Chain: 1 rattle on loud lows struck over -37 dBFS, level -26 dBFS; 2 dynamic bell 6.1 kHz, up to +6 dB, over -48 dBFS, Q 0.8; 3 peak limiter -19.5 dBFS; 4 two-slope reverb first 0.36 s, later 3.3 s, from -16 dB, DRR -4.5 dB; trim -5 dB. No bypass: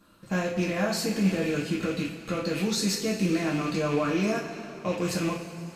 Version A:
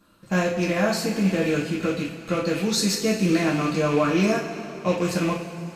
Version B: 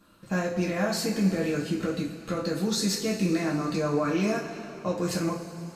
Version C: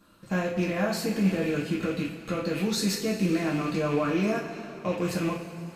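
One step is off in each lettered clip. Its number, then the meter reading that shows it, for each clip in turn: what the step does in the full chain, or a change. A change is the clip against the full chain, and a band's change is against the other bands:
3, mean gain reduction 3.0 dB; 1, 2 kHz band -1.5 dB; 2, 8 kHz band -3.0 dB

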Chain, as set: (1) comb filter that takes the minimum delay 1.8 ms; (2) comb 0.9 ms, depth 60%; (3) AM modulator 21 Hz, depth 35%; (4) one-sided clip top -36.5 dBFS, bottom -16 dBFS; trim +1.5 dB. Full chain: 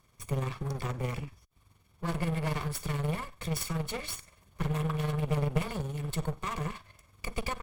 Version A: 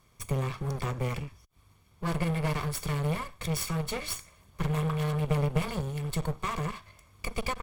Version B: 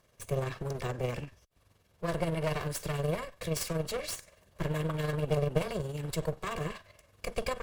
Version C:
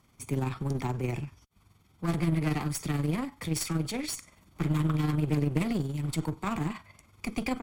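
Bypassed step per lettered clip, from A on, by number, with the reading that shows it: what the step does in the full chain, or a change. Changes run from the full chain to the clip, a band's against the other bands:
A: 3, crest factor change -2.0 dB; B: 2, 500 Hz band +5.5 dB; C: 1, 250 Hz band +6.0 dB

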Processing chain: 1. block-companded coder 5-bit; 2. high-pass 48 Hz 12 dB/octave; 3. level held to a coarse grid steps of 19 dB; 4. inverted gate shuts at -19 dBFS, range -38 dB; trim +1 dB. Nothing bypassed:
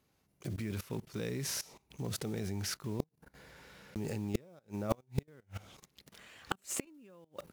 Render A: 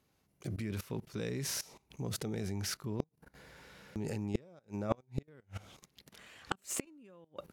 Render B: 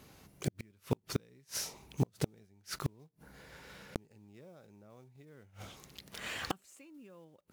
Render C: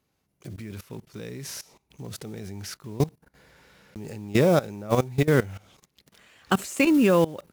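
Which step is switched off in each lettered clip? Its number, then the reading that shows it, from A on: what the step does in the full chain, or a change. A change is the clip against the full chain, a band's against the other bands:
1, distortion -24 dB; 3, crest factor change -2.5 dB; 4, crest factor change -10.0 dB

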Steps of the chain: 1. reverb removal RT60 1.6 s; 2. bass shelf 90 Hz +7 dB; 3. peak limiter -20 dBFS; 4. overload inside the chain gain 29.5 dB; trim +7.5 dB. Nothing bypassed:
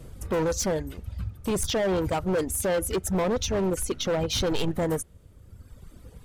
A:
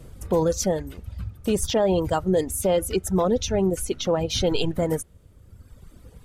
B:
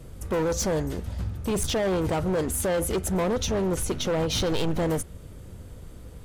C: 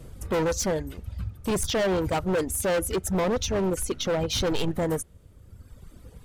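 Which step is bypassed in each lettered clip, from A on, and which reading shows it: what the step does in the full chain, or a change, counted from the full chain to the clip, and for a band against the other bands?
4, distortion -9 dB; 1, momentary loudness spread change +12 LU; 3, 2 kHz band +1.5 dB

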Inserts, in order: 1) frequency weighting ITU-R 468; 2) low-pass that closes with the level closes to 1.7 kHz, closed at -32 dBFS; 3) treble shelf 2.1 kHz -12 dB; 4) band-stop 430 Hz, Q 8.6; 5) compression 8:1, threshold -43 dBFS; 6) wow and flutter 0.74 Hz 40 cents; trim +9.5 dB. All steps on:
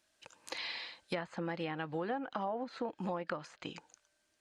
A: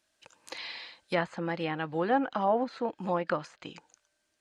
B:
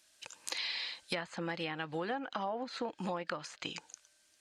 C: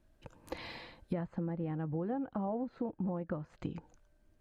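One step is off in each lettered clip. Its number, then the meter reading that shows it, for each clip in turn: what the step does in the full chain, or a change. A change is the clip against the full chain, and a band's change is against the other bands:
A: 5, mean gain reduction 5.0 dB; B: 3, 4 kHz band +6.5 dB; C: 1, 2 kHz band -11.0 dB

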